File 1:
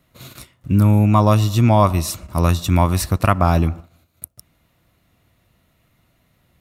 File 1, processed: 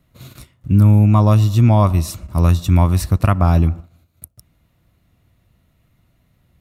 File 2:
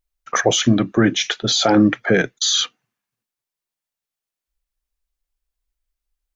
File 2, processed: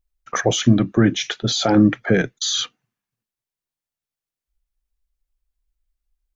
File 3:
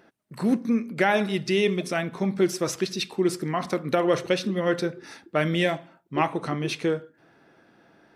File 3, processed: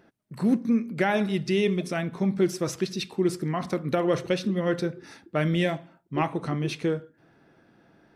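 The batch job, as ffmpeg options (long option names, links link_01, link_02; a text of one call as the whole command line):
ffmpeg -i in.wav -af "lowshelf=frequency=220:gain=9.5,volume=-4dB" out.wav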